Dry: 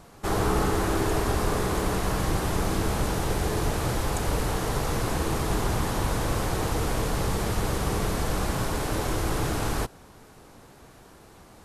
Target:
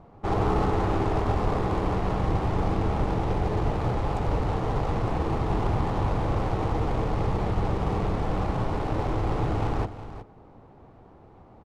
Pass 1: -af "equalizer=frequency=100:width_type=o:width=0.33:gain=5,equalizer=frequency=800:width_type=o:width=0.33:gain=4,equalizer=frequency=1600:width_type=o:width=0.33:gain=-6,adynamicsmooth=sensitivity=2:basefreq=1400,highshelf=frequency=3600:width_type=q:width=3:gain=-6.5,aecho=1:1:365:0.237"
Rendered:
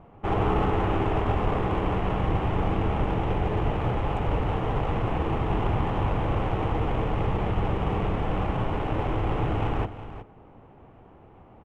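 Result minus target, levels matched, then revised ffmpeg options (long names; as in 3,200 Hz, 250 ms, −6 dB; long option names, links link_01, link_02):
8,000 Hz band −8.5 dB
-af "equalizer=frequency=100:width_type=o:width=0.33:gain=5,equalizer=frequency=800:width_type=o:width=0.33:gain=4,equalizer=frequency=1600:width_type=o:width=0.33:gain=-6,adynamicsmooth=sensitivity=2:basefreq=1400,aecho=1:1:365:0.237"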